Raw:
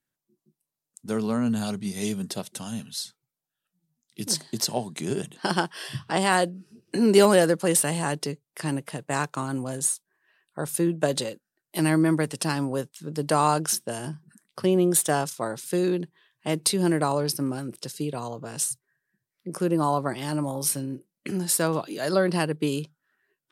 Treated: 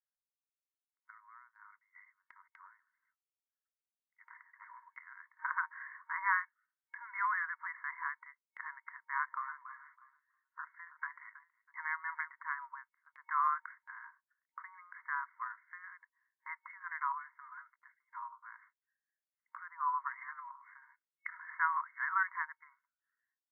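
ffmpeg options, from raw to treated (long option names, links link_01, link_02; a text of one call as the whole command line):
ffmpeg -i in.wav -filter_complex "[0:a]asettb=1/sr,asplit=3[link_01][link_02][link_03];[link_01]atrim=end=1.104[link_04];[link_02]atrim=start=1.1:end=3.03,asetpts=PTS-STARTPTS,afade=type=in:duration=0.004:curve=qsin,afade=type=out:start_time=1.926:duration=0.004:curve=qsin,acompressor=threshold=-35dB:ratio=10:attack=3.2:release=140:knee=1:detection=peak[link_05];[link_03]atrim=start=3.026[link_06];[link_04][link_05]acrossfade=duration=0.004:curve1=hsin:curve2=qsin[link_07];[link_07][link_06]acrossfade=duration=0.004:curve1=qsin:curve2=hsin,asplit=3[link_08][link_09][link_10];[link_08]afade=type=out:start_time=9.13:duration=0.02[link_11];[link_09]aecho=1:1:322|644|966:0.158|0.0539|0.0183,afade=type=in:start_time=9.13:duration=0.02,afade=type=out:start_time=12.32:duration=0.02[link_12];[link_10]afade=type=in:start_time=12.32:duration=0.02[link_13];[link_11][link_12][link_13]amix=inputs=3:normalize=0,asplit=3[link_14][link_15][link_16];[link_14]atrim=end=20.822[link_17];[link_15]atrim=start=20.818:end=22.232,asetpts=PTS-STARTPTS,volume=6dB[link_18];[link_16]atrim=start=22.228[link_19];[link_17][link_18]acrossfade=duration=0.004:curve1=hsin:curve2=hsin[link_20];[link_20][link_19]acrossfade=duration=0.004:curve1=hsin:curve2=hsin,afftfilt=real='re*between(b*sr/4096,930,2200)':imag='im*between(b*sr/4096,930,2200)':win_size=4096:overlap=0.75,agate=range=-11dB:threshold=-59dB:ratio=16:detection=peak,volume=-4.5dB" out.wav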